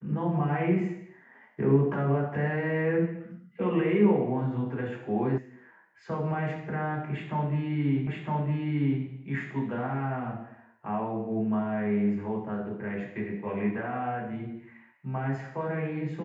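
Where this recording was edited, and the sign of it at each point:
0:05.38: cut off before it has died away
0:08.07: the same again, the last 0.96 s

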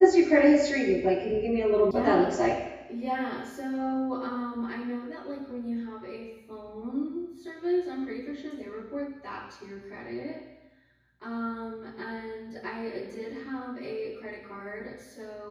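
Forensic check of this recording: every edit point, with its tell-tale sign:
0:01.91: cut off before it has died away

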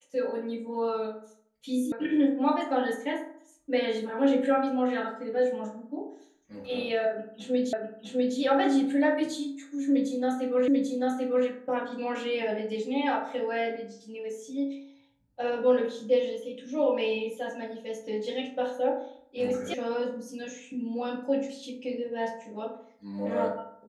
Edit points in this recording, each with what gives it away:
0:01.92: cut off before it has died away
0:07.73: the same again, the last 0.65 s
0:10.68: the same again, the last 0.79 s
0:19.74: cut off before it has died away

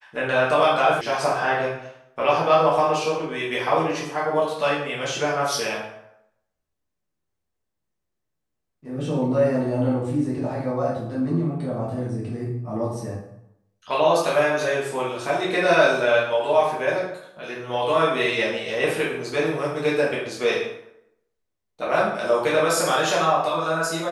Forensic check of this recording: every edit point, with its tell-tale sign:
0:01.01: cut off before it has died away

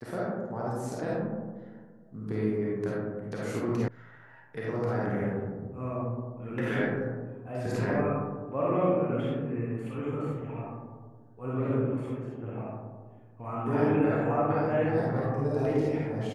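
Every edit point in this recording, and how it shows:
0:03.88: cut off before it has died away

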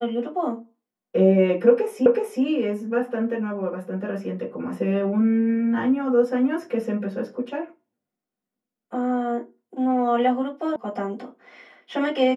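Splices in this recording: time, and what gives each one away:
0:02.06: the same again, the last 0.37 s
0:10.76: cut off before it has died away

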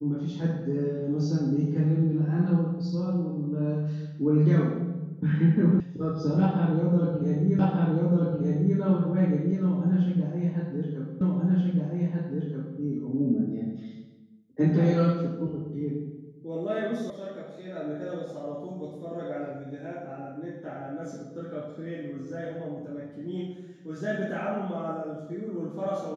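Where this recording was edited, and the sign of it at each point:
0:05.80: cut off before it has died away
0:07.59: the same again, the last 1.19 s
0:11.21: the same again, the last 1.58 s
0:17.10: cut off before it has died away

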